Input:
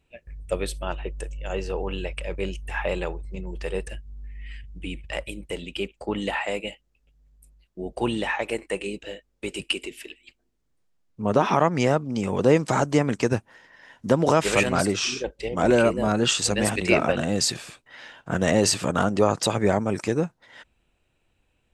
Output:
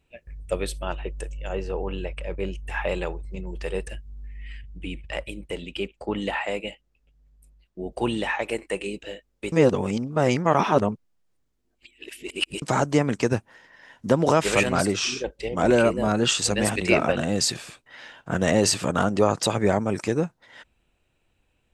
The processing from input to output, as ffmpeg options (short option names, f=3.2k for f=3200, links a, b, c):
-filter_complex "[0:a]asettb=1/sr,asplit=3[a][b][c];[a]atrim=end=1.494[d];[b]atrim=start=1.49:end=2.68,asetpts=PTS-STARTPTS,afade=t=in:d=0.004:c=qsin,afade=t=out:st=1.186:d=0.004:c=qsin,highshelf=f=2.8k:g=-9[e];[c]atrim=start=2.676[f];[d][e]acrossfade=d=0.004:c1=hsin:c2=qsin[g];[g][f]acrossfade=d=0.004:c1=qsin:c2=hsin,asettb=1/sr,asplit=3[h][i][j];[h]atrim=end=4.524[k];[i]atrim=start=4.52:end=7.92,asetpts=PTS-STARTPTS,afade=t=in:d=0.004:c=qsin,afade=t=out:st=3.396:d=0.004:c=qsin,highshelf=f=6.3k:g=-6.5[l];[j]atrim=start=7.916[m];[k][l]acrossfade=d=0.004:c1=hsin:c2=qsin[n];[n][m]acrossfade=d=0.004:c1=qsin:c2=hsin,asplit=3[o][p][q];[o]atrim=end=9.522[r];[p]atrim=start=9.518:end=12.622,asetpts=PTS-STARTPTS,areverse[s];[q]atrim=start=12.618[t];[r][s]acrossfade=d=0.004:c1=hsin:c2=hsin[u];[u][t]acrossfade=d=0.004:c1=hsin:c2=hsin"